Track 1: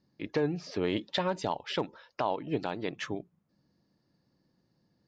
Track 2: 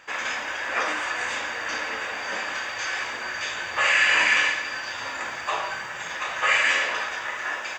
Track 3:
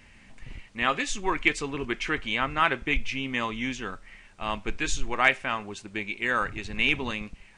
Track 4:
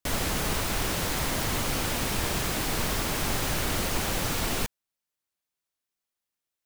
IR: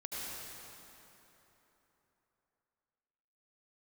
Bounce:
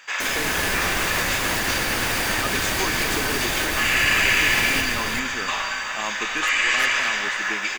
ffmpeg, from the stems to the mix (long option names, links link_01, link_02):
-filter_complex "[0:a]volume=-7.5dB[link_01];[1:a]tiltshelf=frequency=1200:gain=-7.5,volume=-1dB,asplit=3[link_02][link_03][link_04];[link_03]volume=-6.5dB[link_05];[link_04]volume=-9.5dB[link_06];[2:a]aeval=exprs='0.119*(abs(mod(val(0)/0.119+3,4)-2)-1)':channel_layout=same,adelay=1550,volume=2dB,asplit=2[link_07][link_08];[link_08]volume=-18dB[link_09];[3:a]adelay=150,volume=1dB,asplit=3[link_10][link_11][link_12];[link_11]volume=-6.5dB[link_13];[link_12]volume=-5.5dB[link_14];[link_02][link_07][link_10]amix=inputs=3:normalize=0,highpass=220,alimiter=limit=-16dB:level=0:latency=1:release=128,volume=0dB[link_15];[4:a]atrim=start_sample=2205[link_16];[link_05][link_09][link_13]amix=inputs=3:normalize=0[link_17];[link_17][link_16]afir=irnorm=-1:irlink=0[link_18];[link_06][link_14]amix=inputs=2:normalize=0,aecho=0:1:381:1[link_19];[link_01][link_15][link_18][link_19]amix=inputs=4:normalize=0"